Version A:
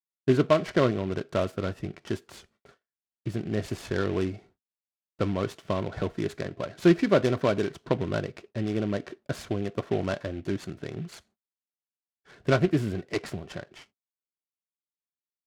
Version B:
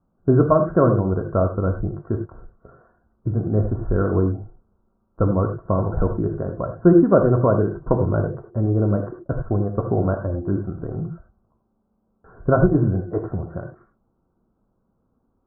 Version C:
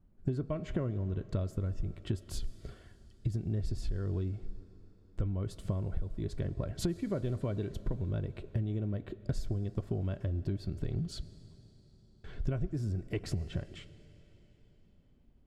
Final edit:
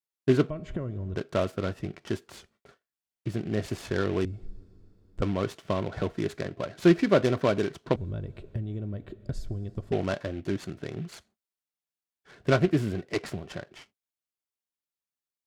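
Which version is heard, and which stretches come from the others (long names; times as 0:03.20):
A
0:00.50–0:01.16: punch in from C
0:04.25–0:05.22: punch in from C
0:07.96–0:09.92: punch in from C
not used: B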